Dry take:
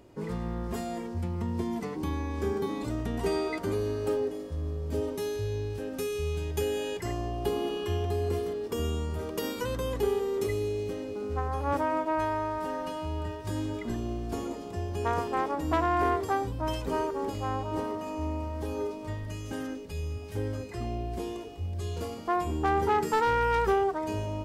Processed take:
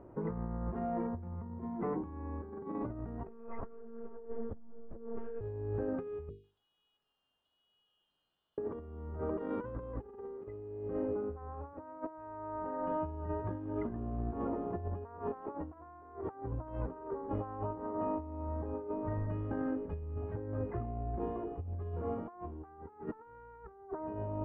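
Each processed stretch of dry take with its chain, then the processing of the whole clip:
3.27–5.41 monotone LPC vocoder at 8 kHz 230 Hz + ensemble effect
6.29–8.58 steep high-pass 2900 Hz 96 dB/oct + compressor 3:1, threshold -53 dBFS + lo-fi delay 0.147 s, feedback 35%, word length 11-bit, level -10.5 dB
whole clip: LPF 1400 Hz 24 dB/oct; notches 50/100/150/200/250/300/350/400/450 Hz; negative-ratio compressor -36 dBFS, ratio -0.5; gain -2.5 dB

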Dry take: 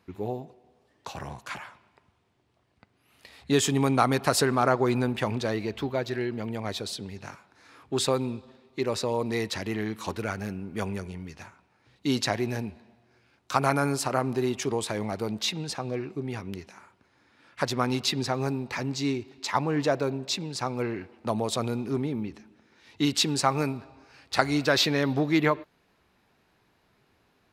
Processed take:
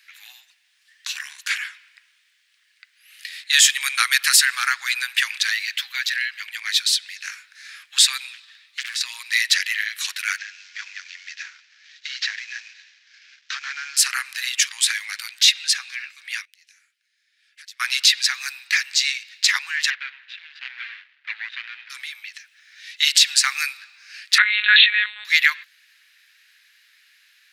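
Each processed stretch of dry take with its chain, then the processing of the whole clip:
3.8–6.23 HPF 330 Hz + high shelf 10000 Hz +4.5 dB
8.33–9.01 HPF 730 Hz 24 dB/oct + compressor, threshold -38 dBFS + Doppler distortion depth 0.53 ms
10.38–13.97 CVSD 32 kbps + compressor 2.5:1, threshold -33 dBFS + dynamic EQ 4000 Hz, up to -4 dB, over -54 dBFS, Q 0.85
16.45–17.8 passive tone stack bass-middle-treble 6-0-2 + compressor 2:1, threshold -58 dBFS
19.9–21.9 median filter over 41 samples + LPF 3500 Hz 24 dB/oct
24.38–25.25 low shelf 410 Hz +4.5 dB + monotone LPC vocoder at 8 kHz 210 Hz + sustainer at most 35 dB/s
whole clip: elliptic high-pass 1700 Hz, stop band 70 dB; maximiser +18.5 dB; gain -1.5 dB

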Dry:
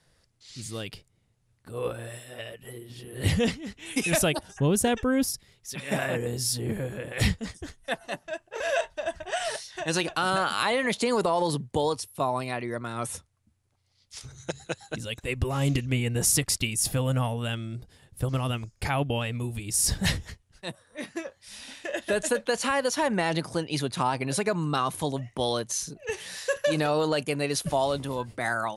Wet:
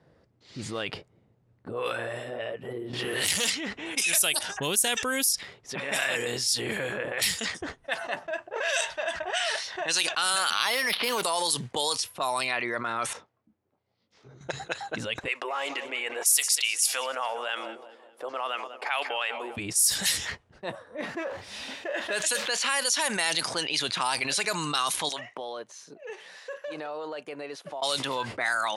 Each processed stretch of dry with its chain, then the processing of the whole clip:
2.93–3.5 compressor 2:1, threshold -33 dBFS + sample leveller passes 3
10.5–11.23 low shelf 190 Hz +5 dB + decimation joined by straight lines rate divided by 6×
13.13–14.41 three-band isolator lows -15 dB, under 150 Hz, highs -15 dB, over 6600 Hz + compressor, threshold -49 dBFS + detuned doubles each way 34 cents
15.28–19.57 Bessel high-pass 660 Hz, order 4 + feedback echo 0.199 s, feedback 56%, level -18 dB
21.01–22.57 zero-crossing step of -39.5 dBFS + compressor 2:1, threshold -28 dBFS + three-band expander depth 70%
25.09–27.82 HPF 1500 Hz 6 dB/oct + compressor 2:1, threshold -48 dBFS
whole clip: low-pass opened by the level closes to 340 Hz, open at -21 dBFS; differentiator; fast leveller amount 70%

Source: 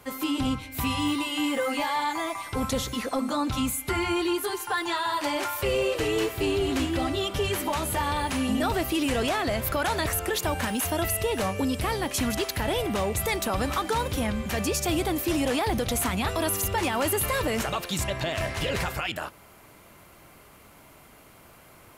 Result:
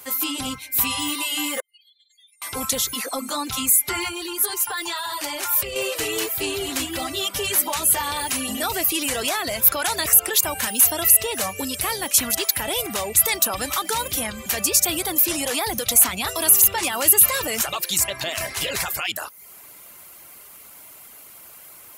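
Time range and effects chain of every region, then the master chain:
1.6–2.42 spectral contrast raised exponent 2.5 + steep high-pass 3000 Hz 48 dB/oct + compressor 2:1, threshold -59 dBFS
4.08–5.76 low shelf 79 Hz +12 dB + compressor 4:1, threshold -27 dBFS
whole clip: RIAA curve recording; reverb removal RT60 0.51 s; low shelf 110 Hz +8.5 dB; gain +1.5 dB

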